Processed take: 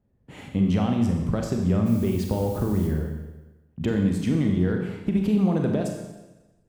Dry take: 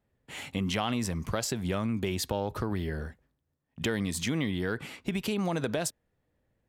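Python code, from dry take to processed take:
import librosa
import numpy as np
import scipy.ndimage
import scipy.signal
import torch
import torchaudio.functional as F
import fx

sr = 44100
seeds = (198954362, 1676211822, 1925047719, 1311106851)

y = fx.curve_eq(x, sr, hz=(210.0, 2500.0, 12000.0), db=(0, -16, -20))
y = fx.dmg_noise_colour(y, sr, seeds[0], colour='blue', level_db=-57.0, at=(1.85, 2.87), fade=0.02)
y = fx.rev_schroeder(y, sr, rt60_s=1.1, comb_ms=30, drr_db=2.0)
y = y * librosa.db_to_amplitude(8.0)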